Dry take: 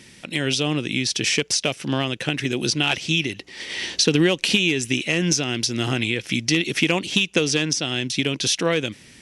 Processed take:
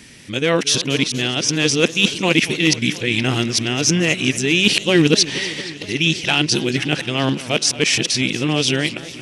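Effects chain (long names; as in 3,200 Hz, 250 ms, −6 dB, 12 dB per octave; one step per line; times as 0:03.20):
played backwards from end to start
feedback echo with a swinging delay time 234 ms, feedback 73%, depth 205 cents, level −16.5 dB
level +4 dB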